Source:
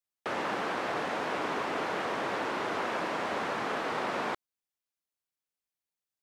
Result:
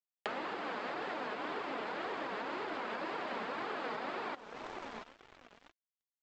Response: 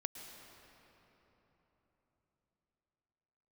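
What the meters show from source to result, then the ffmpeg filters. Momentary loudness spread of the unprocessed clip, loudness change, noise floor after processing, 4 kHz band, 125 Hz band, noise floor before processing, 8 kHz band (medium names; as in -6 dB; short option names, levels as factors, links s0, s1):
2 LU, -7.5 dB, under -85 dBFS, -6.5 dB, -11.0 dB, under -85 dBFS, under -10 dB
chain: -filter_complex "[0:a]highpass=130,asplit=2[s0][s1];[s1]adelay=683,lowpass=f=2500:p=1,volume=0.112,asplit=2[s2][s3];[s3]adelay=683,lowpass=f=2500:p=1,volume=0.49,asplit=2[s4][s5];[s5]adelay=683,lowpass=f=2500:p=1,volume=0.49,asplit=2[s6][s7];[s7]adelay=683,lowpass=f=2500:p=1,volume=0.49[s8];[s0][s2][s4][s6][s8]amix=inputs=5:normalize=0,asplit=2[s9][s10];[1:a]atrim=start_sample=2205,asetrate=74970,aresample=44100[s11];[s10][s11]afir=irnorm=-1:irlink=0,volume=0.531[s12];[s9][s12]amix=inputs=2:normalize=0,aresample=11025,aresample=44100,aresample=16000,aeval=exprs='sgn(val(0))*max(abs(val(0))-0.00266,0)':c=same,aresample=44100,alimiter=level_in=1.06:limit=0.0631:level=0:latency=1:release=405,volume=0.944,acompressor=threshold=0.00316:ratio=5,flanger=delay=2.1:depth=2.8:regen=41:speed=1.9:shape=triangular,volume=5.62"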